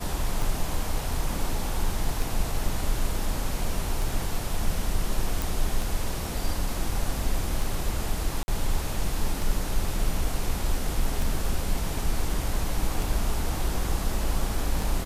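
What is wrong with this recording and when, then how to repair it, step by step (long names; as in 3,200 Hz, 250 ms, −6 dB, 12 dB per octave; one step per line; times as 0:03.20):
scratch tick 33 1/3 rpm
0:05.42: click
0:08.43–0:08.48: drop-out 51 ms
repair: click removal
repair the gap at 0:08.43, 51 ms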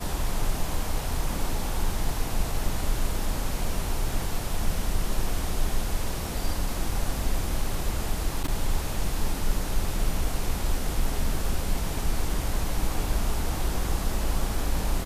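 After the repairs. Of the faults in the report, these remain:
none of them is left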